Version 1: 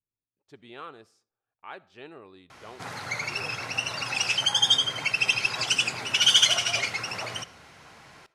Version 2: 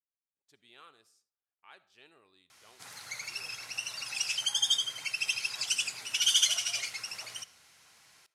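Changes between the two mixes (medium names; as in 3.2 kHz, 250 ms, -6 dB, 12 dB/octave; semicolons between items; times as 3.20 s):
speech: send +6.0 dB; master: add pre-emphasis filter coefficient 0.9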